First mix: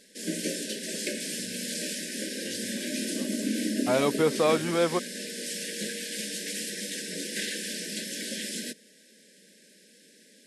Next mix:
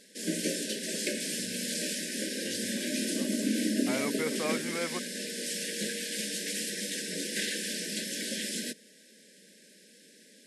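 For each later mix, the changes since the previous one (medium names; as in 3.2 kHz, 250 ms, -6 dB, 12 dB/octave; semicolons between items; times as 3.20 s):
second voice: add four-pole ladder low-pass 2.3 kHz, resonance 70%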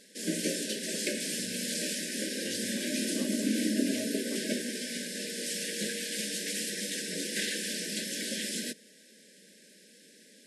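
second voice: muted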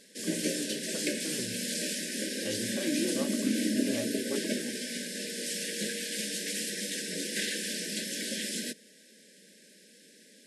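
speech +11.0 dB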